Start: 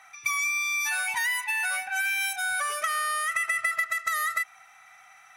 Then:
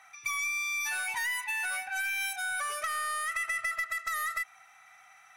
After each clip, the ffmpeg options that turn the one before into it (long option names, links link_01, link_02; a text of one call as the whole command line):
ffmpeg -i in.wav -af "aeval=exprs='(tanh(11.2*val(0)+0.1)-tanh(0.1))/11.2':channel_layout=same,volume=-3.5dB" out.wav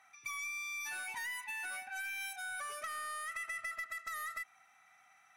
ffmpeg -i in.wav -af "equalizer=frequency=250:width=1:gain=10,volume=-9dB" out.wav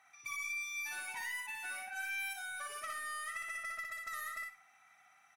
ffmpeg -i in.wav -af "aecho=1:1:60|120|180:0.708|0.156|0.0343,volume=-2dB" out.wav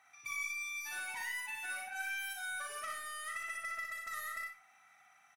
ffmpeg -i in.wav -filter_complex "[0:a]asplit=2[link_01][link_02];[link_02]adelay=39,volume=-7dB[link_03];[link_01][link_03]amix=inputs=2:normalize=0" out.wav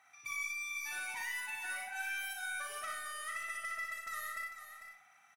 ffmpeg -i in.wav -af "aecho=1:1:447:0.316" out.wav